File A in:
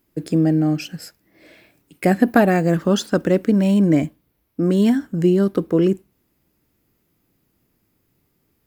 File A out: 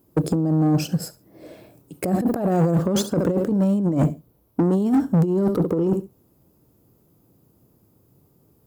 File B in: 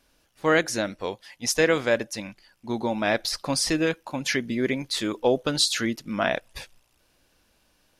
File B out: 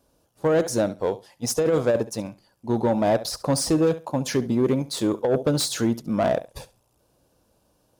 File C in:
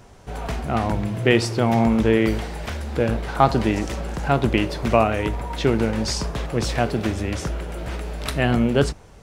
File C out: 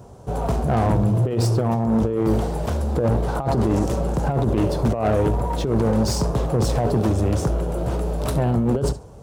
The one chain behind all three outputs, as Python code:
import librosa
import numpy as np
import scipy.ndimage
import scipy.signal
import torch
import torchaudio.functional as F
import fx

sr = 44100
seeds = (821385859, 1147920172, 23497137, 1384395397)

p1 = np.sign(x) * np.maximum(np.abs(x) - 10.0 ** (-37.0 / 20.0), 0.0)
p2 = x + (p1 * librosa.db_to_amplitude(-3.5))
p3 = fx.graphic_eq(p2, sr, hz=(125, 500, 1000, 2000, 8000), db=(6, 5, 3, -10, 3))
p4 = p3 + fx.echo_feedback(p3, sr, ms=69, feedback_pct=17, wet_db=-18.5, dry=0)
p5 = fx.over_compress(p4, sr, threshold_db=-13.0, ratio=-0.5)
p6 = 10.0 ** (-13.5 / 20.0) * np.tanh(p5 / 10.0 ** (-13.5 / 20.0))
p7 = scipy.signal.sosfilt(scipy.signal.butter(2, 40.0, 'highpass', fs=sr, output='sos'), p6)
y = fx.peak_eq(p7, sr, hz=4200.0, db=-6.5, octaves=2.9)